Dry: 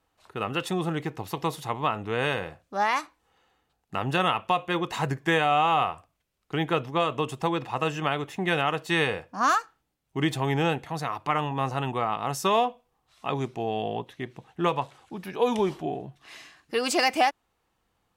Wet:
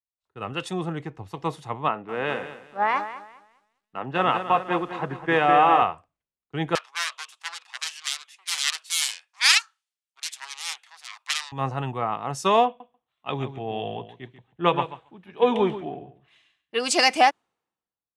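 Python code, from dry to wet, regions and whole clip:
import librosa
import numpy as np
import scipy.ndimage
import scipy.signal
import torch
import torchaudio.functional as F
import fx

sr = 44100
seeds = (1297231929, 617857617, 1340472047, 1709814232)

y = fx.chain(x, sr, fx.bandpass_edges(low_hz=180.0, high_hz=2900.0),
    fx.echo_crushed(ms=205, feedback_pct=55, bits=8, wet_db=-7.5), at=(1.88, 5.82))
y = fx.chain(y, sr, fx.self_delay(depth_ms=0.66),
    fx.highpass(hz=1000.0, slope=24), at=(6.75, 11.52))
y = fx.chain(y, sr, fx.highpass(hz=43.0, slope=12),
    fx.high_shelf_res(hz=4100.0, db=-6.0, q=3.0),
    fx.echo_feedback(ms=140, feedback_pct=16, wet_db=-9.0), at=(12.66, 16.8))
y = scipy.signal.sosfilt(scipy.signal.butter(4, 10000.0, 'lowpass', fs=sr, output='sos'), y)
y = fx.band_widen(y, sr, depth_pct=100)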